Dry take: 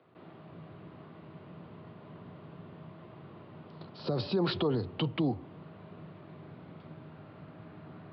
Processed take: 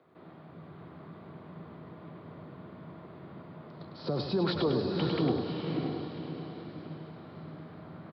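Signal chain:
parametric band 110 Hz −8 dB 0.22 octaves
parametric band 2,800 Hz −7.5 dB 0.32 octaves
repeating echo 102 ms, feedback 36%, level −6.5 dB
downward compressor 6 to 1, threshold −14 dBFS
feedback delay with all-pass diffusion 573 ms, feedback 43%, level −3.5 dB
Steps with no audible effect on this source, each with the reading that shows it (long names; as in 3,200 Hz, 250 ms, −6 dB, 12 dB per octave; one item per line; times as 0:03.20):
downward compressor, threshold −14 dBFS: peak of its input −19.0 dBFS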